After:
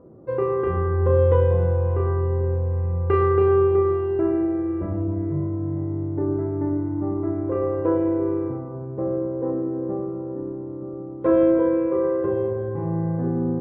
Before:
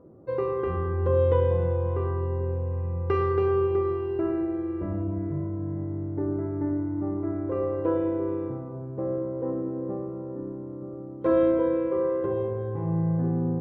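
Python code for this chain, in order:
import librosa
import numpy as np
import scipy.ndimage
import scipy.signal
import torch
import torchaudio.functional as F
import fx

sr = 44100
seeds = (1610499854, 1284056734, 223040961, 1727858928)

y = scipy.signal.sosfilt(scipy.signal.butter(2, 2500.0, 'lowpass', fs=sr, output='sos'), x)
y = fx.doubler(y, sr, ms=33.0, db=-8.0)
y = y * librosa.db_to_amplitude(3.5)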